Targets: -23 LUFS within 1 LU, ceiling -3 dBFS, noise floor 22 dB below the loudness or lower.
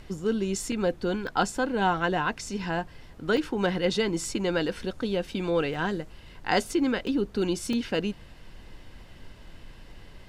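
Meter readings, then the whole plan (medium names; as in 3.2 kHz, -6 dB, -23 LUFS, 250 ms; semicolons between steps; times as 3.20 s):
dropouts 6; longest dropout 2.3 ms; noise floor -49 dBFS; noise floor target -50 dBFS; loudness -28.0 LUFS; peak level -11.0 dBFS; loudness target -23.0 LUFS
-> interpolate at 0.72/1.27/3.37/5.74/7.07/7.73 s, 2.3 ms; noise print and reduce 6 dB; trim +5 dB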